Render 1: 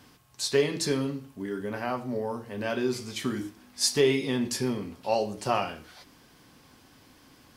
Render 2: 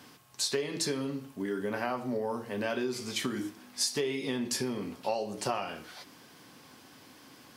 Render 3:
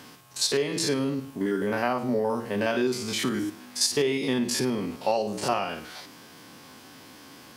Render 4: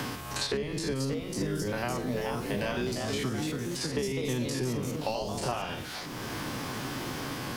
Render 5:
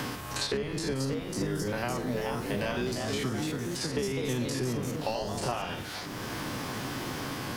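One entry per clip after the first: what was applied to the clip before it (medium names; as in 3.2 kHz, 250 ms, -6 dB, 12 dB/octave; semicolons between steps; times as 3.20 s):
compression 10:1, threshold -30 dBFS, peak gain reduction 13 dB; high-pass 100 Hz; bass shelf 130 Hz -7 dB; trim +3 dB
spectrogram pixelated in time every 50 ms; trim +7.5 dB
octave divider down 1 oct, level -1 dB; ever faster or slower copies 633 ms, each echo +2 st, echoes 2, each echo -6 dB; three bands compressed up and down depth 100%; trim -7.5 dB
mains buzz 100 Hz, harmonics 20, -49 dBFS -2 dB/octave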